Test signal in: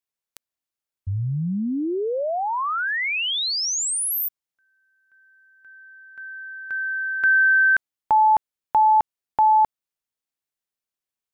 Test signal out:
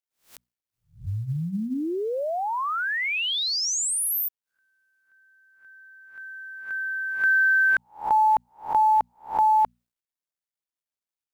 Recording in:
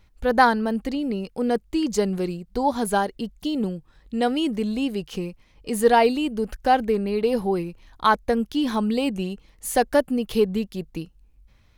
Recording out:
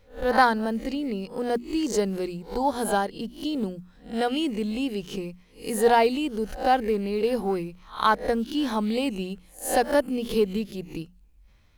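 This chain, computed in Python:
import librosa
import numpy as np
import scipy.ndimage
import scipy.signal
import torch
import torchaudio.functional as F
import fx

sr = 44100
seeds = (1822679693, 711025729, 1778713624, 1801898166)

y = fx.spec_swells(x, sr, rise_s=0.33)
y = fx.hum_notches(y, sr, base_hz=60, count=4)
y = fx.quant_companded(y, sr, bits=8)
y = y * 10.0 ** (-3.0 / 20.0)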